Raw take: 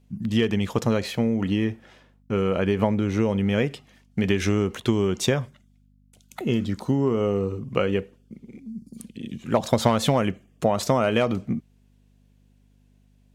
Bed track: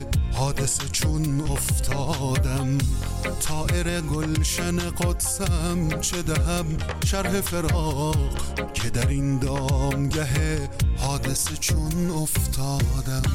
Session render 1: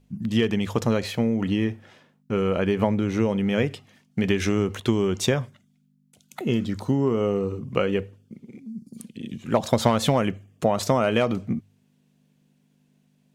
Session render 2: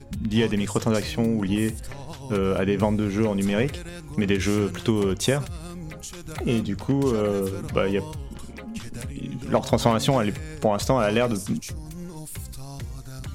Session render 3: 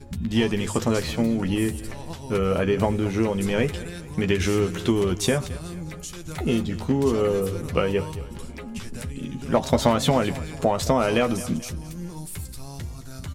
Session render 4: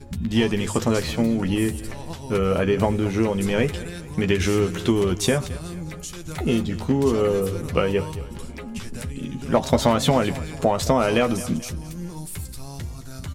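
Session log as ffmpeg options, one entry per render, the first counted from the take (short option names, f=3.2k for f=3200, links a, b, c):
-af "bandreject=f=50:t=h:w=4,bandreject=f=100:t=h:w=4"
-filter_complex "[1:a]volume=-12.5dB[a];[0:a][a]amix=inputs=2:normalize=0"
-filter_complex "[0:a]asplit=2[a][b];[b]adelay=12,volume=-7dB[c];[a][c]amix=inputs=2:normalize=0,aecho=1:1:218|436|654|872:0.141|0.0636|0.0286|0.0129"
-af "volume=1.5dB,alimiter=limit=-3dB:level=0:latency=1"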